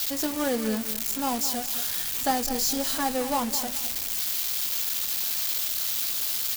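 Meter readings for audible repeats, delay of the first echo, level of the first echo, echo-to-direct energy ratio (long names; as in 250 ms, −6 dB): 2, 210 ms, −12.0 dB, −11.5 dB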